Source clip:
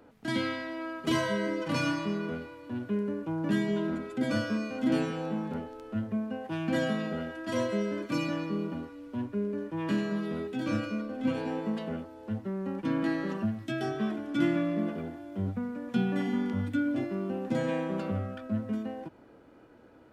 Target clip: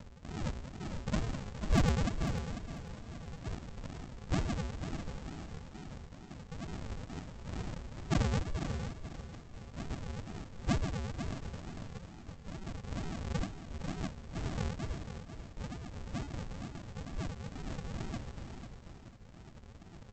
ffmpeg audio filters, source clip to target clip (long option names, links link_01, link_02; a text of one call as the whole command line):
ffmpeg -i in.wav -af "lowpass=1800,aecho=1:1:5.9:0.81,acompressor=mode=upward:threshold=-35dB:ratio=2.5,highpass=frequency=1200:width_type=q:width=13,aresample=16000,acrusher=samples=40:mix=1:aa=0.000001:lfo=1:lforange=24:lforate=2.2,aresample=44100,asoftclip=type=hard:threshold=-14dB,aecho=1:1:495|990|1485:0.355|0.103|0.0298,volume=-8dB" out.wav